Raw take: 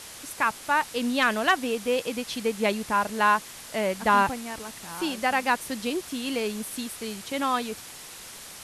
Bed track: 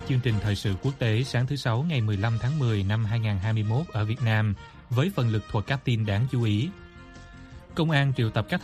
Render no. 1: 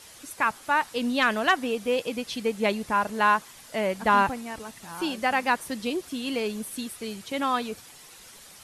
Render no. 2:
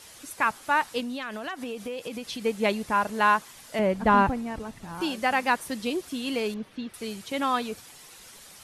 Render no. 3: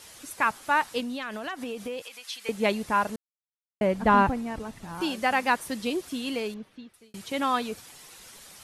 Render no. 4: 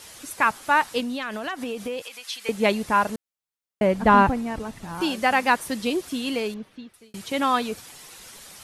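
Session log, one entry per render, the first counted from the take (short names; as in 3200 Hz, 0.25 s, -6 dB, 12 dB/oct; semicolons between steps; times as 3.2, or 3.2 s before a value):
denoiser 8 dB, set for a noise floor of -43 dBFS
1–2.45 compressor 8:1, threshold -30 dBFS; 3.79–5.01 tilt -2.5 dB/oct; 6.54–6.94 air absorption 270 m
2.02–2.49 HPF 1200 Hz; 3.16–3.81 mute; 6.16–7.14 fade out
gain +4 dB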